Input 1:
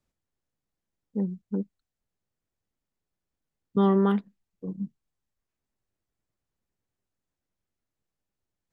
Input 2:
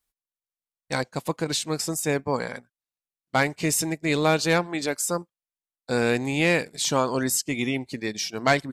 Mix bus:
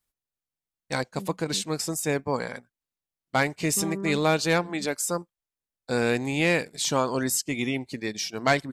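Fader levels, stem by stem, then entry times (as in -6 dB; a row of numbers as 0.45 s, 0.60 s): -12.0 dB, -1.5 dB; 0.00 s, 0.00 s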